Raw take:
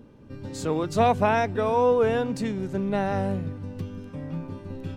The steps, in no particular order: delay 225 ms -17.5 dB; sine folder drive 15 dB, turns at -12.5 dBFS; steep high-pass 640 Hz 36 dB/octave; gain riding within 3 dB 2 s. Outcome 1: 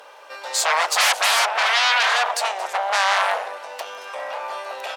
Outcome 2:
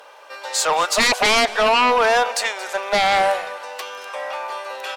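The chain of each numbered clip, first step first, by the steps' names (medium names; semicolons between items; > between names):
delay > sine folder > gain riding > steep high-pass; gain riding > steep high-pass > sine folder > delay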